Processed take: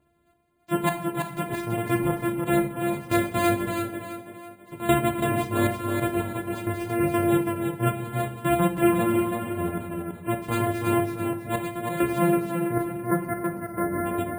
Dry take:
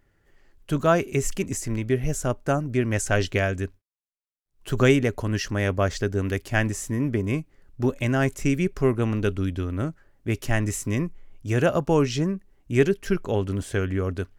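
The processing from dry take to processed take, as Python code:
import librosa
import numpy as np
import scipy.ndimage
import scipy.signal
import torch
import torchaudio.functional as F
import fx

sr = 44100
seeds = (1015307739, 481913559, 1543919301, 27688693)

y = np.r_[np.sort(x[:len(x) // 128 * 128].reshape(-1, 128), axis=1).ravel(), x[len(x) // 128 * 128:]]
y = fx.spec_erase(y, sr, start_s=12.48, length_s=1.57, low_hz=2100.0, high_hz=4400.0)
y = scipy.signal.sosfilt(scipy.signal.butter(2, 77.0, 'highpass', fs=sr, output='sos'), y)
y = fx.spec_gate(y, sr, threshold_db=-20, keep='strong')
y = fx.chorus_voices(y, sr, voices=2, hz=0.44, base_ms=14, depth_ms=2.9, mix_pct=40)
y = fx.step_gate(y, sr, bpm=135, pattern='xxx...xx....xxxx', floor_db=-12.0, edge_ms=4.5)
y = fx.transient(y, sr, attack_db=-1, sustain_db=-6)
y = fx.echo_tape(y, sr, ms=330, feedback_pct=43, wet_db=-3, lp_hz=5800.0, drive_db=13.0, wow_cents=18)
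y = fx.room_shoebox(y, sr, seeds[0], volume_m3=180.0, walls='mixed', distance_m=0.45)
y = np.repeat(y[::4], 4)[:len(y)]
y = F.gain(torch.from_numpy(y), 3.0).numpy()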